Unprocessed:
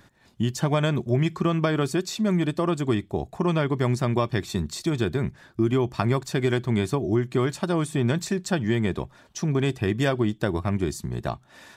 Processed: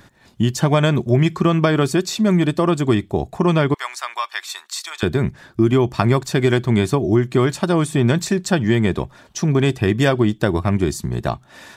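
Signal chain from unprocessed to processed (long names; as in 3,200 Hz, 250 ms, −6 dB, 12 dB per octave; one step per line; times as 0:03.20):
0:03.74–0:05.03: high-pass filter 970 Hz 24 dB per octave
level +7 dB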